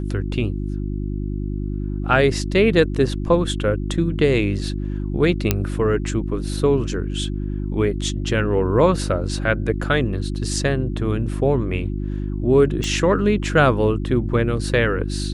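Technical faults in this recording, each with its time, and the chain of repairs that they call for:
hum 50 Hz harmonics 7 -25 dBFS
5.51 pop -2 dBFS
12.84 pop -12 dBFS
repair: de-click; de-hum 50 Hz, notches 7

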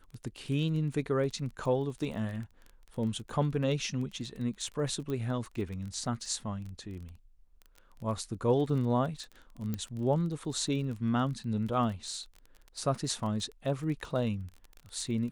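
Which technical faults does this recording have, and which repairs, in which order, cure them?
crackle 23/s -38 dBFS
5.1 pop -25 dBFS
9.74 pop -21 dBFS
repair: de-click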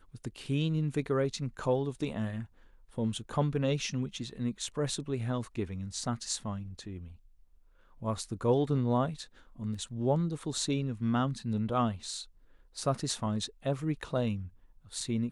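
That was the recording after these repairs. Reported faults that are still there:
9.74 pop

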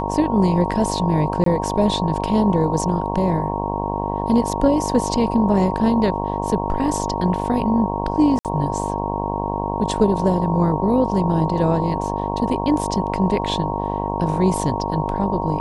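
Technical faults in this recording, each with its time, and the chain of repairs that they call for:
buzz 50 Hz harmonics 22 -25 dBFS
tone 930 Hz -26 dBFS
1.44–1.46 gap 23 ms
8.39–8.45 gap 58 ms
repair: notch 930 Hz, Q 30; de-hum 50 Hz, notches 22; interpolate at 1.44, 23 ms; interpolate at 8.39, 58 ms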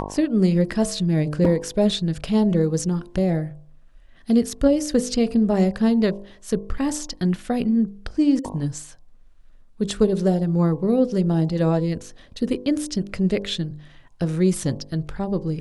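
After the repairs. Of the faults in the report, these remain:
none

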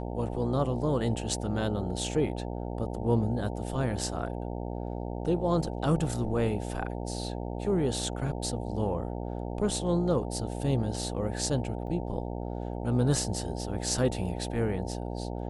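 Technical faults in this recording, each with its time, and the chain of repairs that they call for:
buzz 60 Hz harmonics 15 -35 dBFS
11.87 gap 3.1 ms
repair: de-hum 60 Hz, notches 15; interpolate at 11.87, 3.1 ms

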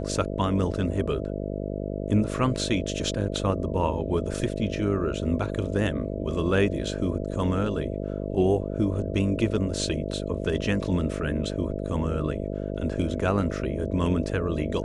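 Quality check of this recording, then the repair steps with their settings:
buzz 50 Hz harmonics 13 -31 dBFS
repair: de-hum 50 Hz, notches 13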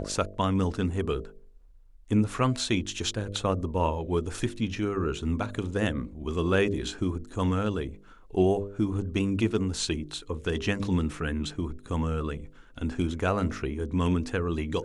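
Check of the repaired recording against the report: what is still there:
none

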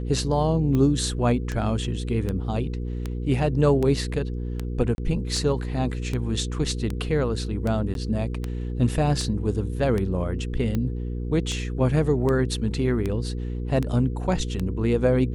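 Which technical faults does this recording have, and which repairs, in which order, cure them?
hum 60 Hz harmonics 8 -29 dBFS
tick 78 rpm -15 dBFS
4.95–4.98 gap 31 ms
7.94–7.95 gap 12 ms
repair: de-click; de-hum 60 Hz, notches 8; interpolate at 4.95, 31 ms; interpolate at 7.94, 12 ms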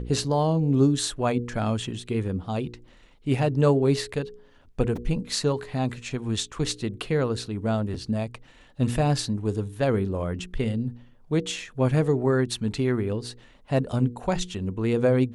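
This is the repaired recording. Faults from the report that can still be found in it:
none

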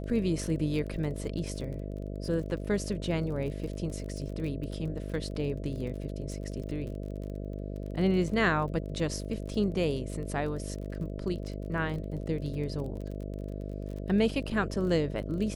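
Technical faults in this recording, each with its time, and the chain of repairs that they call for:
buzz 50 Hz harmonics 13 -37 dBFS
crackle 28/s -38 dBFS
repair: de-click; de-hum 50 Hz, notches 13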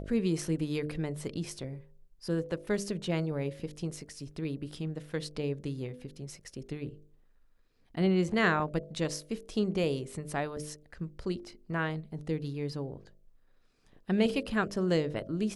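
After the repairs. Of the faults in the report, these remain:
none

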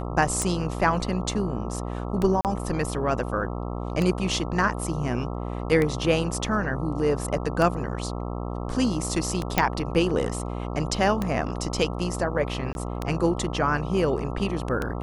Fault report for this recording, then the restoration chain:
buzz 60 Hz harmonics 22 -31 dBFS
tick 33 1/3 rpm -13 dBFS
2.41–2.45 gap 38 ms
9.58 pop
12.73–12.75 gap 21 ms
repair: de-click; de-hum 60 Hz, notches 22; interpolate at 2.41, 38 ms; interpolate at 12.73, 21 ms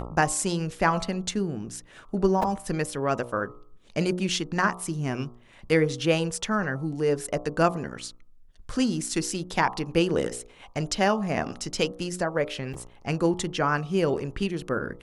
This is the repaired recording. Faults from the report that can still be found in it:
none

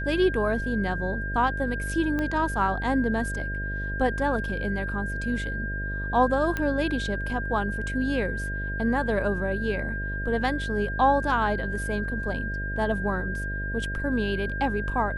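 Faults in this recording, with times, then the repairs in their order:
buzz 50 Hz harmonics 13 -32 dBFS
tone 1600 Hz -32 dBFS
2.19 pop -17 dBFS
6.57 pop -15 dBFS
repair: de-click; de-hum 50 Hz, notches 13; notch 1600 Hz, Q 30

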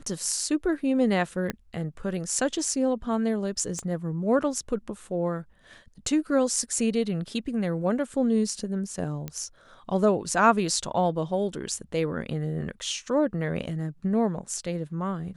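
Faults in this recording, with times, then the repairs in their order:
1.5 pop -14 dBFS
3.79 pop -21 dBFS
9.28 pop -19 dBFS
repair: de-click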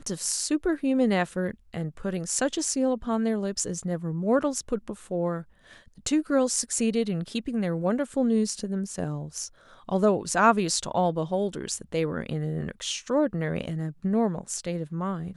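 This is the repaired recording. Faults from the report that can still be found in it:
1.5 pop
3.79 pop

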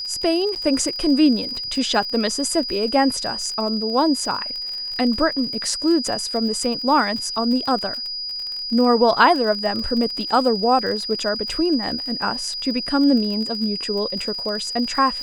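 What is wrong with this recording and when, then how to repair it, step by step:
crackle 41/s -27 dBFS
tone 4900 Hz -26 dBFS
0.55–0.56 gap 8.8 ms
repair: de-click; notch 4900 Hz, Q 30; interpolate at 0.55, 8.8 ms

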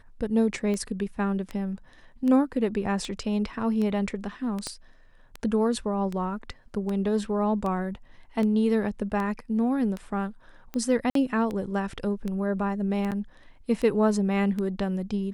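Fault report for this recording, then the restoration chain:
tick 78 rpm -20 dBFS
4.67 pop -18 dBFS
11.1–11.15 gap 53 ms
13.11–13.12 gap 8.1 ms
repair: de-click; interpolate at 11.1, 53 ms; interpolate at 13.11, 8.1 ms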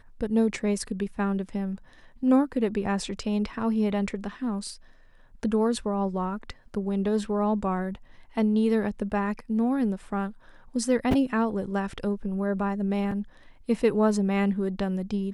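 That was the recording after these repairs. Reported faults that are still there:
4.67 pop

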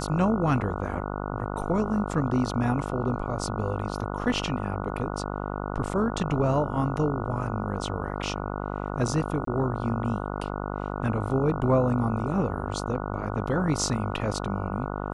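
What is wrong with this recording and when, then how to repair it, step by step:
buzz 50 Hz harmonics 29 -32 dBFS
9.45–9.47 gap 23 ms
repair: de-hum 50 Hz, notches 29; interpolate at 9.45, 23 ms

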